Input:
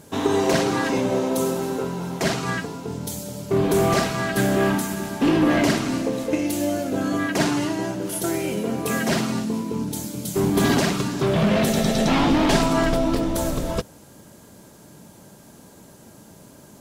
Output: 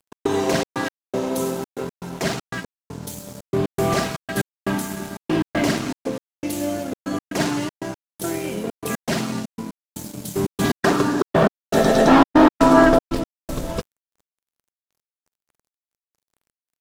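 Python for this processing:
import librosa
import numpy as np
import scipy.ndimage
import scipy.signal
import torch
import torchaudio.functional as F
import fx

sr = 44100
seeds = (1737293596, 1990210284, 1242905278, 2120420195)

y = fx.step_gate(x, sr, bpm=119, pattern='x.xxx.x..xxxx.', floor_db=-60.0, edge_ms=4.5)
y = fx.spec_box(y, sr, start_s=10.81, length_s=2.28, low_hz=240.0, high_hz=1900.0, gain_db=9)
y = np.sign(y) * np.maximum(np.abs(y) - 10.0 ** (-38.0 / 20.0), 0.0)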